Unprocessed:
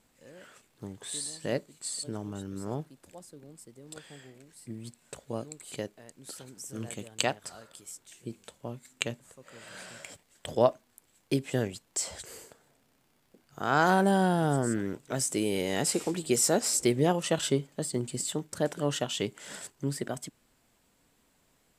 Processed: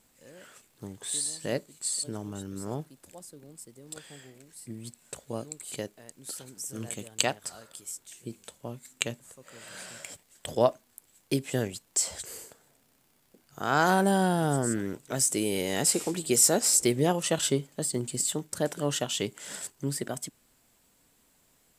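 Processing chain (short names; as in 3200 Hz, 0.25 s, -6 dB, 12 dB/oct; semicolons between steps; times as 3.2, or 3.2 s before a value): high shelf 6100 Hz +8.5 dB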